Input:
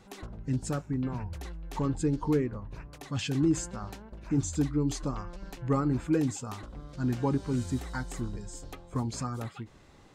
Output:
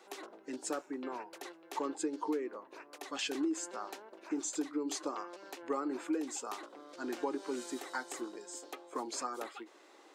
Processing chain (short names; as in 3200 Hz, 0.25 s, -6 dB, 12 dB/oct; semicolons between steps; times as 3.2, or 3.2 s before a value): Chebyshev high-pass 320 Hz, order 4; compressor 6:1, threshold -32 dBFS, peak gain reduction 9.5 dB; gain +1 dB